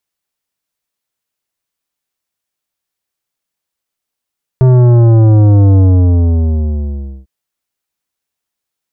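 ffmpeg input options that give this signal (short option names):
-f lavfi -i "aevalsrc='0.562*clip((2.65-t)/1.49,0,1)*tanh(3.98*sin(2*PI*130*2.65/log(65/130)*(exp(log(65/130)*t/2.65)-1)))/tanh(3.98)':d=2.65:s=44100"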